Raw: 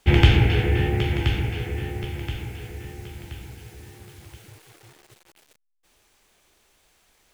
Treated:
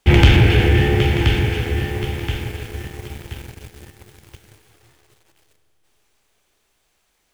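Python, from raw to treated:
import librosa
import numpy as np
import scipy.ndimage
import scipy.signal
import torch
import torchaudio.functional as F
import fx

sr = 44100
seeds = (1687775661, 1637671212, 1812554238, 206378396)

y = fx.rev_schroeder(x, sr, rt60_s=3.8, comb_ms=27, drr_db=8.5)
y = fx.leveller(y, sr, passes=2)
y = y * librosa.db_to_amplitude(-1.0)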